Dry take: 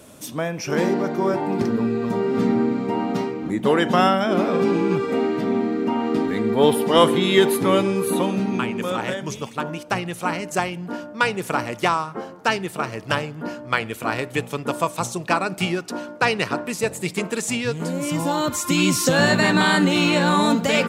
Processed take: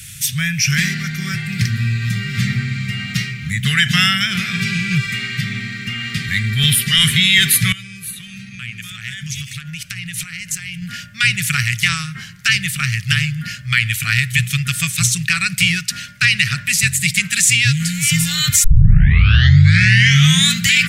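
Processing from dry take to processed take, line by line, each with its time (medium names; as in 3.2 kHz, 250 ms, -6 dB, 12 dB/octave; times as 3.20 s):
7.72–10.82 s: compression 20:1, threshold -32 dBFS
18.64 s: tape start 1.91 s
whole clip: elliptic band-stop 140–1900 Hz, stop band 40 dB; loudness maximiser +17.5 dB; trim -1 dB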